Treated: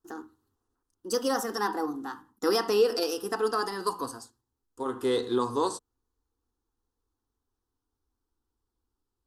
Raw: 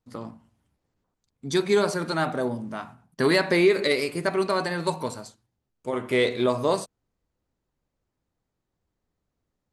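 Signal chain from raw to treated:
gliding playback speed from 141% → 69%
parametric band 380 Hz −2.5 dB 0.27 octaves
phaser with its sweep stopped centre 610 Hz, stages 6

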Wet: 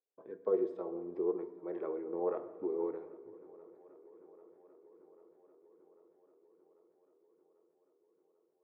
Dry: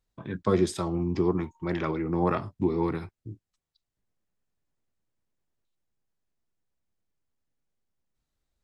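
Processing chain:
four-pole ladder band-pass 510 Hz, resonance 65%
feedback echo with a long and a short gap by turns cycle 793 ms, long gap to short 1.5 to 1, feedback 69%, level −22 dB
on a send at −11.5 dB: convolution reverb RT60 1.4 s, pre-delay 3 ms

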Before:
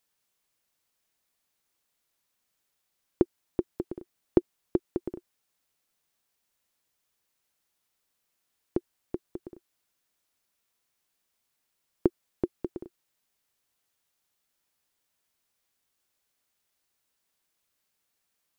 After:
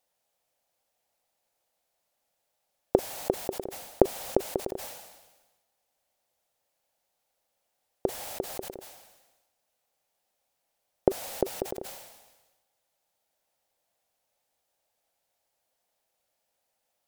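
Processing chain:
flat-topped bell 600 Hz +11.5 dB 1 octave
wrong playback speed 44.1 kHz file played as 48 kHz
level that may fall only so fast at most 49 dB per second
level −1 dB

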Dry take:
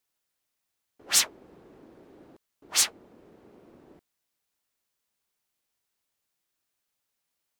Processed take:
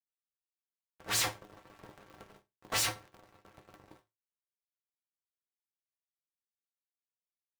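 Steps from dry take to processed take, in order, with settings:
0:01.18–0:01.62: notch filter 520 Hz, Q 12
fuzz pedal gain 40 dB, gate −49 dBFS
resonators tuned to a chord G#3 minor, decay 0.22 s
ring modulator with a square carrier 110 Hz

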